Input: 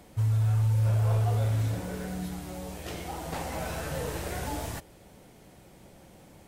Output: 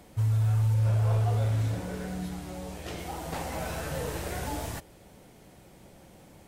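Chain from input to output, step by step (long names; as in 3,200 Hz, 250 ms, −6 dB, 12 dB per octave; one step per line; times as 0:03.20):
0:00.74–0:02.99: high-shelf EQ 12,000 Hz −8 dB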